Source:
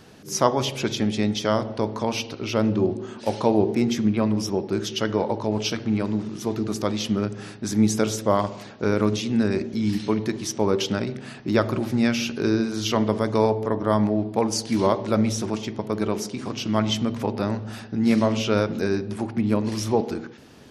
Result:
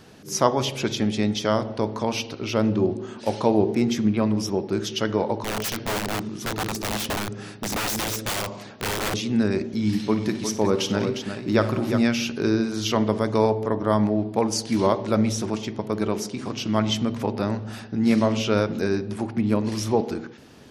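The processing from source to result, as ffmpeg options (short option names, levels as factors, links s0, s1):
-filter_complex "[0:a]asettb=1/sr,asplit=3[s0][s1][s2];[s0]atrim=end=5.424[s3];[s1]atrim=start=5.42:end=9.14,asetpts=PTS-STARTPTS,afade=t=in:d=0.004:c=qsin,afade=t=out:st=3.716:d=0.004:c=qsin,aeval=exprs='(mod(11.2*val(0)+1,2)-1)/11.2':c=same[s4];[s2]atrim=start=9.136[s5];[s3][s4]acrossfade=d=0.004:c1=hsin:c2=qsin[s6];[s6][s5]acrossfade=d=0.004:c1=qsin:c2=hsin,asettb=1/sr,asplit=3[s7][s8][s9];[s7]atrim=end=9.714[s10];[s8]atrim=start=9.71:end=12.03,asetpts=PTS-STARTPTS,afade=t=in:d=0.004:c=qsin,afade=t=out:st=2.316:d=0.004:c=qsin,aecho=1:1:56|94|191|356:0.211|0.112|0.1|0.422,atrim=end_sample=102312[s11];[s9]atrim=start=12.026[s12];[s10][s11]acrossfade=d=0.004:c1=hsin:c2=qsin[s13];[s13][s12]acrossfade=d=0.004:c1=qsin:c2=hsin"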